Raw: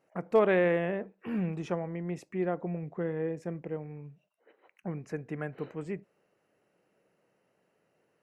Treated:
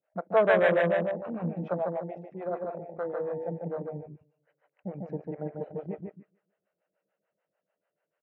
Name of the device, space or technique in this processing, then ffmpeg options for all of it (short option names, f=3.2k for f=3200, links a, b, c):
guitar amplifier with harmonic tremolo: -filter_complex "[0:a]asettb=1/sr,asplit=3[a][b][c];[a]atrim=end=1.734[d];[b]atrim=start=1.73:end=3.3,asetpts=PTS-STARTPTS,afade=t=in:d=0.004:c=qsin,afade=t=out:st=1.566:d=0.004:c=qsin,bass=f=250:g=-14,treble=f=4k:g=7[e];[c]atrim=start=3.296[f];[d][e]acrossfade=d=0.004:c1=hsin:c2=qsin[g];[g][f]acrossfade=d=0.004:c1=qsin:c2=hsin,asplit=2[h][i];[i]adelay=147,lowpass=f=2.2k:p=1,volume=-3dB,asplit=2[j][k];[k]adelay=147,lowpass=f=2.2k:p=1,volume=0.36,asplit=2[l][m];[m]adelay=147,lowpass=f=2.2k:p=1,volume=0.36,asplit=2[n][o];[o]adelay=147,lowpass=f=2.2k:p=1,volume=0.36,asplit=2[p][q];[q]adelay=147,lowpass=f=2.2k:p=1,volume=0.36[r];[h][j][l][n][p][r]amix=inputs=6:normalize=0,acrossover=split=460[s][t];[s]aeval=exprs='val(0)*(1-1/2+1/2*cos(2*PI*6.8*n/s))':c=same[u];[t]aeval=exprs='val(0)*(1-1/2-1/2*cos(2*PI*6.8*n/s))':c=same[v];[u][v]amix=inputs=2:normalize=0,asoftclip=type=tanh:threshold=-26dB,highpass=96,equalizer=f=130:t=q:w=4:g=-9,equalizer=f=250:t=q:w=4:g=-9,equalizer=f=380:t=q:w=4:g=-7,equalizer=f=620:t=q:w=4:g=8,equalizer=f=1.5k:t=q:w=4:g=5,lowpass=f=3.5k:w=0.5412,lowpass=f=3.5k:w=1.3066,afwtdn=0.00708,volume=8dB"